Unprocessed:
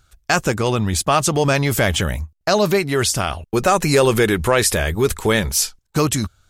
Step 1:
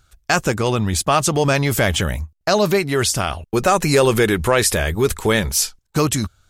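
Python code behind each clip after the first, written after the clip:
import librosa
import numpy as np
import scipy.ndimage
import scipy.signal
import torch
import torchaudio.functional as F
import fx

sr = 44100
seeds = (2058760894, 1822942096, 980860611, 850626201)

y = x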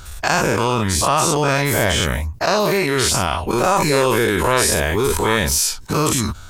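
y = fx.spec_dilate(x, sr, span_ms=120)
y = fx.peak_eq(y, sr, hz=970.0, db=8.5, octaves=0.21)
y = fx.env_flatten(y, sr, amount_pct=50)
y = F.gain(torch.from_numpy(y), -7.5).numpy()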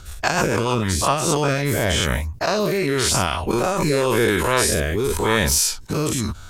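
y = fx.rotary_switch(x, sr, hz=6.7, then_hz=0.9, switch_at_s=0.67)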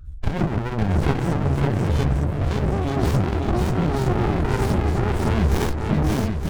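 y = fx.spec_expand(x, sr, power=2.2)
y = fx.echo_swing(y, sr, ms=914, ratio=1.5, feedback_pct=38, wet_db=-4)
y = fx.running_max(y, sr, window=65)
y = F.gain(torch.from_numpy(y), 1.5).numpy()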